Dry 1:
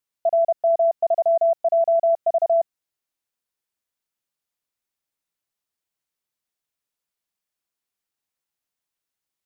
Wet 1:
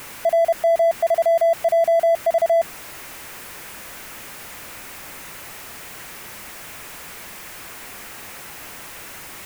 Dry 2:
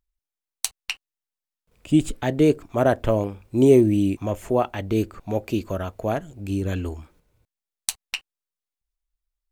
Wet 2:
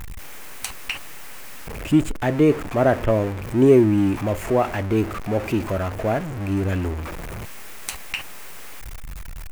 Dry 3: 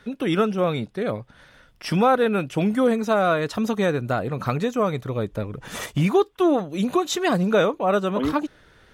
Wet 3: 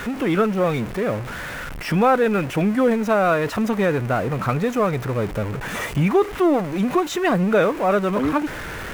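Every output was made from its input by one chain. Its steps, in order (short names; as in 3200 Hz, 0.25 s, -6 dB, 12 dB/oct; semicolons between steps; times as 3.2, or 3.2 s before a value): zero-crossing step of -25.5 dBFS; resonant high shelf 2900 Hz -6 dB, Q 1.5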